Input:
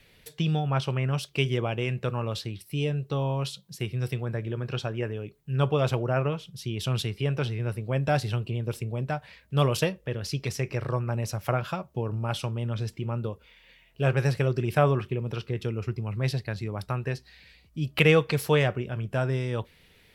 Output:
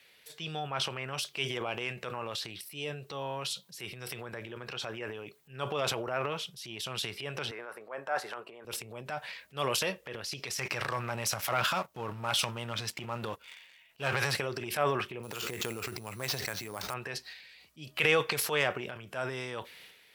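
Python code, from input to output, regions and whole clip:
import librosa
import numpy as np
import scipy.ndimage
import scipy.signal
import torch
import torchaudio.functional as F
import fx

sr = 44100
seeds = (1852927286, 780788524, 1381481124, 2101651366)

y = fx.chain(x, sr, fx.highpass(hz=480.0, slope=12),
    fx.high_shelf_res(hz=2100.0, db=-13.0, q=1.5), at=(7.51, 8.65))
y = fx.chain(y, sr, fx.peak_eq(hz=420.0, db=-6.0, octaves=1.2),
    fx.leveller(passes=2), at=(10.56, 14.37))
y = fx.chain(y, sr, fx.sample_hold(seeds[0], rate_hz=10000.0, jitter_pct=0),
    fx.pre_swell(db_per_s=21.0), at=(15.23, 16.94))
y = fx.low_shelf(y, sr, hz=470.0, db=-9.5)
y = fx.transient(y, sr, attack_db=-6, sustain_db=9)
y = fx.highpass(y, sr, hz=370.0, slope=6)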